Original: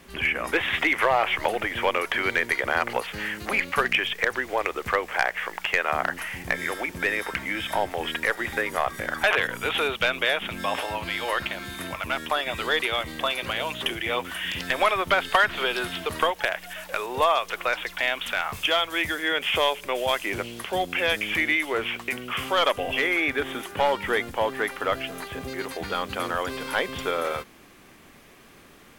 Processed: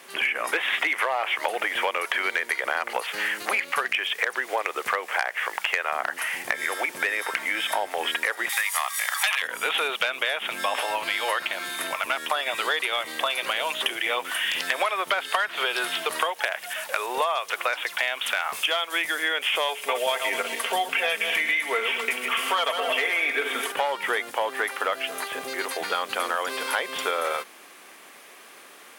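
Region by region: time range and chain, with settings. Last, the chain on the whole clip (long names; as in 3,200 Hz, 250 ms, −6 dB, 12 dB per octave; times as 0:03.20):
0:08.49–0:09.42: high-pass filter 880 Hz 24 dB per octave + high-shelf EQ 3,000 Hz +11.5 dB + notch filter 1,500 Hz, Q 5.3
0:19.68–0:23.72: feedback delay that plays each chunk backwards 125 ms, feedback 47%, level −8 dB + comb filter 4.4 ms, depth 59%
whole clip: high-pass filter 520 Hz 12 dB per octave; parametric band 9,600 Hz +5.5 dB 0.32 octaves; downward compressor, threshold −27 dBFS; level +5.5 dB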